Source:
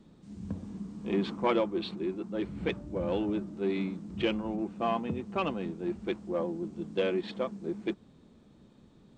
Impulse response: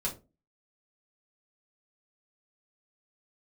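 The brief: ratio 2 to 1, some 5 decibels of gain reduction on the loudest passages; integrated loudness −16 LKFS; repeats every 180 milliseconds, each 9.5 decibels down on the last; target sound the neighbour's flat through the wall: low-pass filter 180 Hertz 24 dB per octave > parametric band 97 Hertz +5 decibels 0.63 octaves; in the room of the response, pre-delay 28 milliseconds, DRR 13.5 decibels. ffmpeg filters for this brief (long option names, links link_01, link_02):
-filter_complex "[0:a]acompressor=threshold=-32dB:ratio=2,aecho=1:1:180|360|540|720:0.335|0.111|0.0365|0.012,asplit=2[link_01][link_02];[1:a]atrim=start_sample=2205,adelay=28[link_03];[link_02][link_03]afir=irnorm=-1:irlink=0,volume=-17dB[link_04];[link_01][link_04]amix=inputs=2:normalize=0,lowpass=frequency=180:width=0.5412,lowpass=frequency=180:width=1.3066,equalizer=frequency=97:width_type=o:width=0.63:gain=5,volume=28.5dB"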